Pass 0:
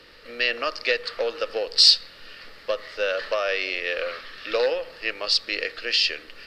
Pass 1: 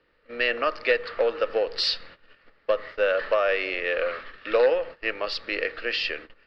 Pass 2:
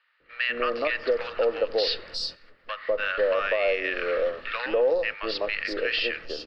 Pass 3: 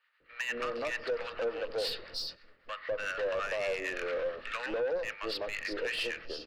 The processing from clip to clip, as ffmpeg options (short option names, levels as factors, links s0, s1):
-af "agate=range=0.141:threshold=0.0112:ratio=16:detection=peak,lowpass=2100,volume=1.41"
-filter_complex "[0:a]acrossover=split=1000|5100[s0][s1][s2];[s0]adelay=200[s3];[s2]adelay=360[s4];[s3][s1][s4]amix=inputs=3:normalize=0,alimiter=limit=0.133:level=0:latency=1:release=101,volume=1.33"
-filter_complex "[0:a]asoftclip=type=tanh:threshold=0.0668,acrossover=split=760[s0][s1];[s0]aeval=exprs='val(0)*(1-0.5/2+0.5/2*cos(2*PI*8.9*n/s))':c=same[s2];[s1]aeval=exprs='val(0)*(1-0.5/2-0.5/2*cos(2*PI*8.9*n/s))':c=same[s3];[s2][s3]amix=inputs=2:normalize=0,volume=0.75"